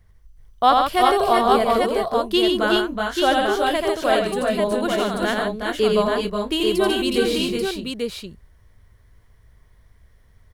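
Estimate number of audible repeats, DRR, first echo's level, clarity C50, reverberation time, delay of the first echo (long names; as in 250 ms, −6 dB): 4, no reverb audible, −3.5 dB, no reverb audible, no reverb audible, 86 ms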